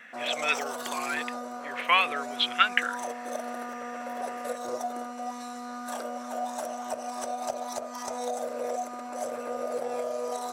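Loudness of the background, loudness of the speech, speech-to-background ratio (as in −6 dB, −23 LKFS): −35.0 LKFS, −27.5 LKFS, 7.5 dB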